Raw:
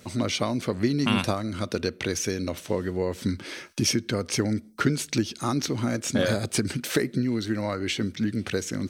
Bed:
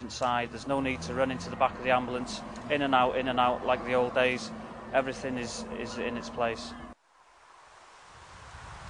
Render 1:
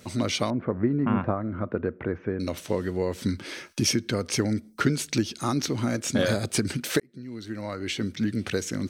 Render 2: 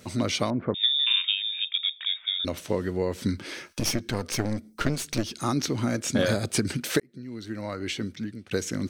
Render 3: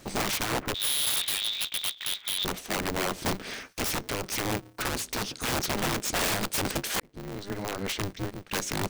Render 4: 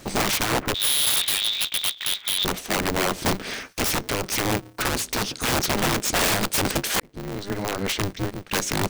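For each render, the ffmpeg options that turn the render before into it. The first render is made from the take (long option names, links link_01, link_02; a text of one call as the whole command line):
ffmpeg -i in.wav -filter_complex "[0:a]asettb=1/sr,asplit=3[link_01][link_02][link_03];[link_01]atrim=end=0.504[link_04];[link_02]atrim=start=0.5:end=2.4,asetpts=PTS-STARTPTS,afade=type=in:duration=0.004:curve=qsin,afade=type=out:start_time=1.896:duration=0.004:curve=qsin,lowpass=frequency=1600:width=0.5412,lowpass=frequency=1600:width=1.3066[link_05];[link_03]atrim=start=2.396[link_06];[link_04][link_05]acrossfade=duration=0.004:curve1=hsin:curve2=qsin[link_07];[link_07][link_06]acrossfade=duration=0.004:curve1=qsin:curve2=hsin,asplit=2[link_08][link_09];[link_08]atrim=end=7,asetpts=PTS-STARTPTS,afade=type=out:start_time=6.996:duration=0.004:curve=hsin[link_10];[link_09]atrim=start=7,asetpts=PTS-STARTPTS,afade=type=in:duration=1.2[link_11];[link_10][link_11]concat=n=2:v=0:a=1" out.wav
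ffmpeg -i in.wav -filter_complex "[0:a]asettb=1/sr,asplit=3[link_01][link_02][link_03];[link_01]atrim=end=0.744[link_04];[link_02]atrim=start=0.74:end=2.45,asetpts=PTS-STARTPTS,afade=type=in:duration=0.004:curve=qsin,afade=type=out:start_time=1.706:duration=0.004:curve=qsin,lowpass=frequency=3200:width_type=q:width=0.5098,lowpass=frequency=3200:width_type=q:width=0.6013,lowpass=frequency=3200:width_type=q:width=0.9,lowpass=frequency=3200:width_type=q:width=2.563,afreqshift=-3800[link_05];[link_03]atrim=start=2.446[link_06];[link_04][link_05]acrossfade=duration=0.004:curve1=hsin:curve2=qsin[link_07];[link_07][link_06]acrossfade=duration=0.004:curve1=qsin:curve2=hsin,asettb=1/sr,asplit=3[link_08][link_09][link_10];[link_08]atrim=end=3.604[link_11];[link_09]atrim=start=3.6:end=5.33,asetpts=PTS-STARTPTS,afade=type=in:duration=0.004:curve=qsin,afade=type=out:start_time=1.726:duration=0.004:curve=qsin,aeval=exprs='clip(val(0),-1,0.0237)':channel_layout=same[link_12];[link_10]atrim=start=5.326[link_13];[link_11][link_12]acrossfade=duration=0.004:curve1=hsin:curve2=qsin[link_14];[link_14][link_13]acrossfade=duration=0.004:curve1=qsin:curve2=hsin,asplit=2[link_15][link_16];[link_15]atrim=end=8.51,asetpts=PTS-STARTPTS,afade=type=out:start_time=7.84:duration=0.67:silence=0.0707946[link_17];[link_16]atrim=start=8.51,asetpts=PTS-STARTPTS,afade=type=in:duration=0.004:curve=hsin:silence=0.0707946[link_18];[link_17][link_18]concat=n=2:v=0:a=1" out.wav
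ffmpeg -i in.wav -af "aeval=exprs='(mod(12.6*val(0)+1,2)-1)/12.6':channel_layout=same,aeval=exprs='val(0)*sgn(sin(2*PI*100*n/s))':channel_layout=same" out.wav
ffmpeg -i in.wav -af "volume=6dB" out.wav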